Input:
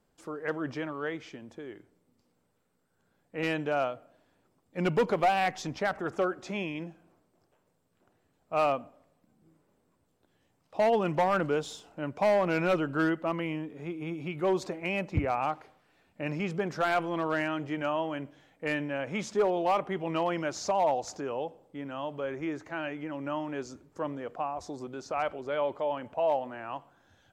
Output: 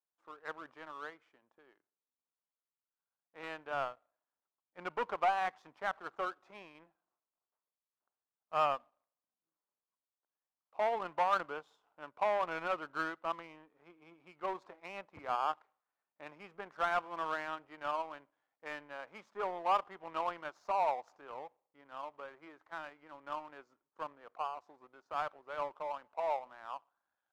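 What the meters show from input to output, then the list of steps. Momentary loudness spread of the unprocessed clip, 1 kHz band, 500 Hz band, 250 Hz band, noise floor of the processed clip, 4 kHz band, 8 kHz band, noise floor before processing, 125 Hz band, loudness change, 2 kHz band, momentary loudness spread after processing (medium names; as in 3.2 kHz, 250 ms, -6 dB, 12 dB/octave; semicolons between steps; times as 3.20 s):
14 LU, -4.0 dB, -11.0 dB, -20.0 dB, under -85 dBFS, -8.5 dB, under -15 dB, -73 dBFS, -23.5 dB, -7.0 dB, -7.5 dB, 18 LU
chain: band-pass filter 1.1 kHz, Q 2.1; power-law waveshaper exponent 1.4; trim +3 dB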